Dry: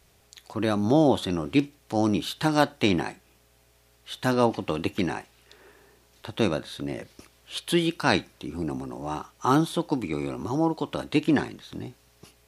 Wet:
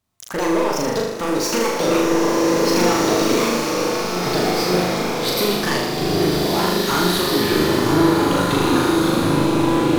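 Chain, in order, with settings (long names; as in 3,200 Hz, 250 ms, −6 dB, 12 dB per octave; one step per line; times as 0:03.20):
gliding playback speed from 164% → 86%
downward compressor, threshold −24 dBFS, peak gain reduction 10 dB
leveller curve on the samples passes 5
on a send: flutter between parallel walls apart 6.7 metres, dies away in 0.91 s
on the sum: slow-attack reverb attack 1,940 ms, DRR −2.5 dB
level −7 dB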